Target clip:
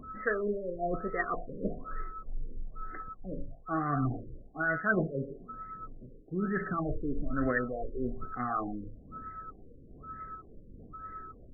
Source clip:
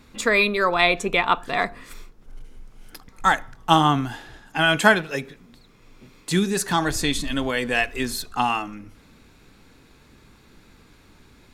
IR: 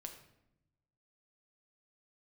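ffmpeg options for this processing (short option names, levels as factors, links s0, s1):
-af "bandreject=f=56.35:t=h:w=4,bandreject=f=112.7:t=h:w=4,bandreject=f=169.05:t=h:w=4,bandreject=f=225.4:t=h:w=4,bandreject=f=281.75:t=h:w=4,bandreject=f=338.1:t=h:w=4,bandreject=f=394.45:t=h:w=4,bandreject=f=450.8:t=h:w=4,bandreject=f=507.15:t=h:w=4,bandreject=f=563.5:t=h:w=4,bandreject=f=619.85:t=h:w=4,bandreject=f=676.2:t=h:w=4,bandreject=f=732.55:t=h:w=4,bandreject=f=788.9:t=h:w=4,bandreject=f=845.25:t=h:w=4,bandreject=f=901.6:t=h:w=4,bandreject=f=957.95:t=h:w=4,bandreject=f=1014.3:t=h:w=4,bandreject=f=1070.65:t=h:w=4,bandreject=f=1127:t=h:w=4,bandreject=f=1183.35:t=h:w=4,bandreject=f=1239.7:t=h:w=4,bandreject=f=1296.05:t=h:w=4,bandreject=f=1352.4:t=h:w=4,bandreject=f=1408.75:t=h:w=4,bandreject=f=1465.1:t=h:w=4,bandreject=f=1521.45:t=h:w=4,bandreject=f=1577.8:t=h:w=4,bandreject=f=1634.15:t=h:w=4,bandreject=f=1690.5:t=h:w=4,bandreject=f=1746.85:t=h:w=4,bandreject=f=1803.2:t=h:w=4,bandreject=f=1859.55:t=h:w=4,bandreject=f=1915.9:t=h:w=4,bandreject=f=1972.25:t=h:w=4,bandreject=f=2028.6:t=h:w=4,bandreject=f=2084.95:t=h:w=4,bandreject=f=2141.3:t=h:w=4,bandreject=f=2197.65:t=h:w=4,areverse,acompressor=threshold=0.0447:ratio=8,areverse,crystalizer=i=5.5:c=0,aeval=exprs='val(0)+0.00891*sin(2*PI*1300*n/s)':c=same,aphaser=in_gain=1:out_gain=1:delay=2.9:decay=0.39:speed=1.2:type=triangular,asuperstop=centerf=920:order=4:qfactor=2.2,afftfilt=real='re*lt(b*sr/1024,560*pow(2100/560,0.5+0.5*sin(2*PI*1.1*pts/sr)))':imag='im*lt(b*sr/1024,560*pow(2100/560,0.5+0.5*sin(2*PI*1.1*pts/sr)))':win_size=1024:overlap=0.75"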